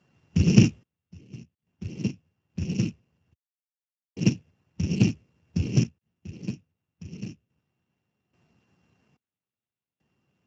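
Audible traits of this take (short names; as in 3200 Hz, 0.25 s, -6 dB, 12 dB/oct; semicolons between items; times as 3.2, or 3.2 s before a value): a buzz of ramps at a fixed pitch in blocks of 16 samples; random-step tremolo 1.2 Hz, depth 100%; Speex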